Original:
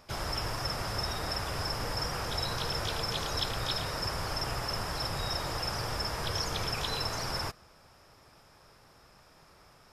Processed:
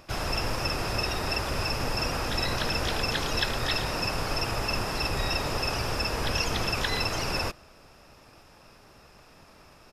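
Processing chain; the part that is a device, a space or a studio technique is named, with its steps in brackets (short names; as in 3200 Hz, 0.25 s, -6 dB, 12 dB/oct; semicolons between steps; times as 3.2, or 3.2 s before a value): octave pedal (harmoniser -12 st -2 dB); gain +3 dB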